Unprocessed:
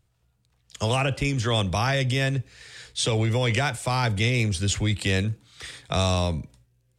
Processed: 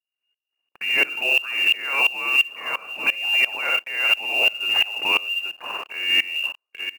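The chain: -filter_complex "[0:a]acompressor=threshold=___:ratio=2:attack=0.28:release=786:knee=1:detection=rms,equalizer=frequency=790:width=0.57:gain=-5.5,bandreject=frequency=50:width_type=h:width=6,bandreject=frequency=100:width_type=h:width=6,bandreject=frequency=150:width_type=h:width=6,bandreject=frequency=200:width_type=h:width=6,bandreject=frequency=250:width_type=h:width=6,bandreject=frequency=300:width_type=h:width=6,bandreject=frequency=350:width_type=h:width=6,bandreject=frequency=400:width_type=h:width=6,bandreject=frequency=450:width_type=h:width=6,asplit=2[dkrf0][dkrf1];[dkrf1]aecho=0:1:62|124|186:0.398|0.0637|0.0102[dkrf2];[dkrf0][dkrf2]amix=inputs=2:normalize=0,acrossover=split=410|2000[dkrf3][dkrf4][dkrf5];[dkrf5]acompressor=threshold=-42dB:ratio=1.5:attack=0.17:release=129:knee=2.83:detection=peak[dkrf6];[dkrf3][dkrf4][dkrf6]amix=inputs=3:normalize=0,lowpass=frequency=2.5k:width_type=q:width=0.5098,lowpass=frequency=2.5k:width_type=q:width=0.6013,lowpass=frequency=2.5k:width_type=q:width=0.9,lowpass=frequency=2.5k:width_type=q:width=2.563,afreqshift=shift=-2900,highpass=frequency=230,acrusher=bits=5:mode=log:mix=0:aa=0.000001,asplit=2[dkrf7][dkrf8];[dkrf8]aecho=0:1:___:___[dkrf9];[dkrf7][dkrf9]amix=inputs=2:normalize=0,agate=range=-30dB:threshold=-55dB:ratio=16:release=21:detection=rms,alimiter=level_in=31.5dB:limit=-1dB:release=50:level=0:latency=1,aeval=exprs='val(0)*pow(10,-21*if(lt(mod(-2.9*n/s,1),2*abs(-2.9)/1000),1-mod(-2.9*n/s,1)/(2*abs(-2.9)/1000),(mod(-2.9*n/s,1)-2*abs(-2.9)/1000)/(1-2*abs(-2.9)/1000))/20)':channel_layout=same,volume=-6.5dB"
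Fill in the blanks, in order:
-31dB, 826, 0.158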